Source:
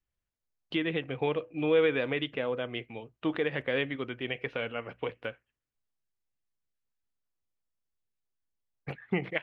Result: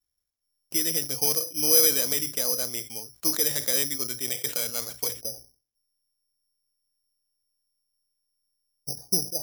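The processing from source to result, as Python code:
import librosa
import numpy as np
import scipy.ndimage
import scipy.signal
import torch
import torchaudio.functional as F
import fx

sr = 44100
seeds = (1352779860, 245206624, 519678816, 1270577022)

y = fx.ellip_lowpass(x, sr, hz=fx.steps((0.0, 2400.0), (5.2, 780.0)), order=4, stop_db=60)
y = (np.kron(y[::8], np.eye(8)[0]) * 8)[:len(y)]
y = fx.sustainer(y, sr, db_per_s=150.0)
y = F.gain(torch.from_numpy(y), -3.5).numpy()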